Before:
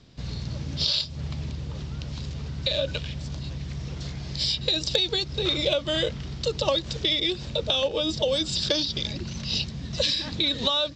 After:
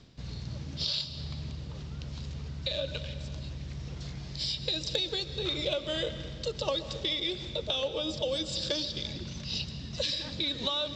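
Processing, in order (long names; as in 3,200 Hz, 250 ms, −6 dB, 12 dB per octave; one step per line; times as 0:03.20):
reversed playback
upward compression, threshold −29 dBFS
reversed playback
comb and all-pass reverb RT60 1.9 s, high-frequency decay 0.9×, pre-delay 90 ms, DRR 11 dB
level −7 dB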